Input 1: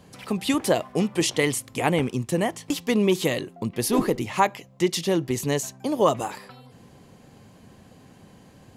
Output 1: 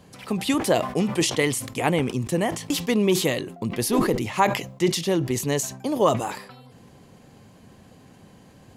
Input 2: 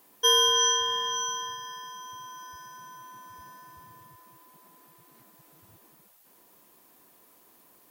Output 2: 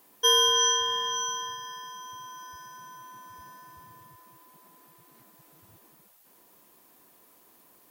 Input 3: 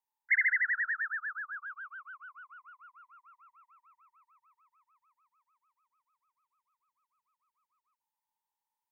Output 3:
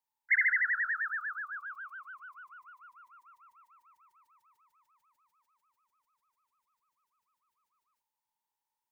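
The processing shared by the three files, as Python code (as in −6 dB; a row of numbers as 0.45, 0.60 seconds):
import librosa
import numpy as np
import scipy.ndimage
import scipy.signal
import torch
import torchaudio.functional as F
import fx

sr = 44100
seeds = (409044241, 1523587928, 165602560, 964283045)

y = fx.sustainer(x, sr, db_per_s=90.0)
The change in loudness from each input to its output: +1.0, 0.0, +0.5 LU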